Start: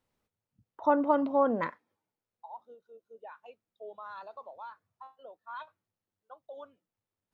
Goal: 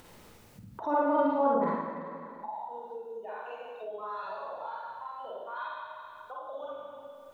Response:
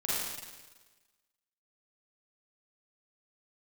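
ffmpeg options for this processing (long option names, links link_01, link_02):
-filter_complex "[1:a]atrim=start_sample=2205[link_01];[0:a][link_01]afir=irnorm=-1:irlink=0,acompressor=mode=upward:threshold=-24dB:ratio=2.5,asettb=1/sr,asplit=3[link_02][link_03][link_04];[link_02]atrim=end=1.544[link_05];[link_03]atrim=start=1.54:end=2.53,asetpts=PTS-STARTPTS,afade=type=in:duration=0.004:curve=qsin,afade=type=out:start_time=0.986:duration=0.004:curve=qsin,highshelf=frequency=1500:width_type=q:width=1.5:gain=-6.5[link_06];[link_04]atrim=start=2.526[link_07];[link_05][link_06]acrossfade=duration=0.004:curve1=hsin:curve2=qsin[link_08];[link_08][link_07]acrossfade=duration=0.004:curve1=qsin:curve2=hsin,volume=-6.5dB"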